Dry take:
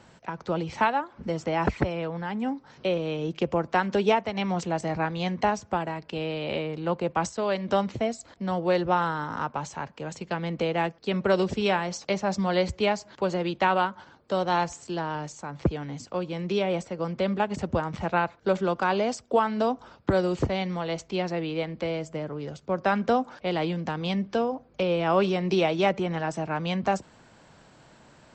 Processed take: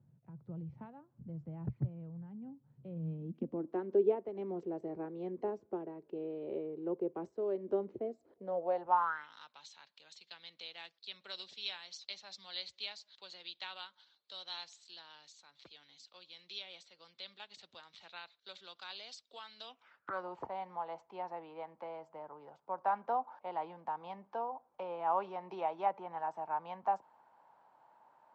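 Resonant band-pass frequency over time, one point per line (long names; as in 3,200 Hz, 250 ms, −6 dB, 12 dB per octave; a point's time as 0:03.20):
resonant band-pass, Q 5.7
0:02.87 130 Hz
0:03.84 380 Hz
0:08.28 380 Hz
0:09.05 1,100 Hz
0:09.35 3,900 Hz
0:19.60 3,900 Hz
0:20.28 890 Hz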